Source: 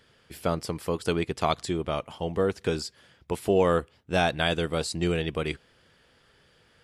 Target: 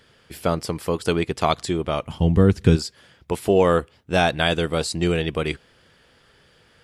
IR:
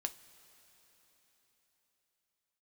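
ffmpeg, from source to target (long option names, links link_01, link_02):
-filter_complex "[0:a]asplit=3[link_01][link_02][link_03];[link_01]afade=type=out:start_time=2.05:duration=0.02[link_04];[link_02]asubboost=boost=8:cutoff=240,afade=type=in:start_time=2.05:duration=0.02,afade=type=out:start_time=2.75:duration=0.02[link_05];[link_03]afade=type=in:start_time=2.75:duration=0.02[link_06];[link_04][link_05][link_06]amix=inputs=3:normalize=0,volume=5dB"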